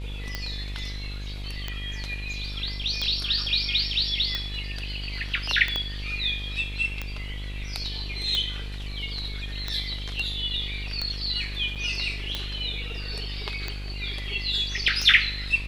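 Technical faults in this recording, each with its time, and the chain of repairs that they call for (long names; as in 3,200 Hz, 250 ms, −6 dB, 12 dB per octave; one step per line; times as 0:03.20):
mains buzz 50 Hz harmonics 26 −34 dBFS
scratch tick 45 rpm −14 dBFS
0:05.76: click −14 dBFS
0:11.75–0:11.76: drop-out 7.1 ms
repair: click removal
hum removal 50 Hz, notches 26
repair the gap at 0:11.75, 7.1 ms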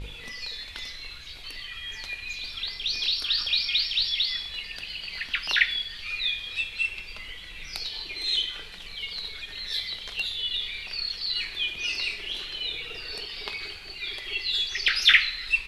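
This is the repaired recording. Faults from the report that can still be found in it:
0:05.76: click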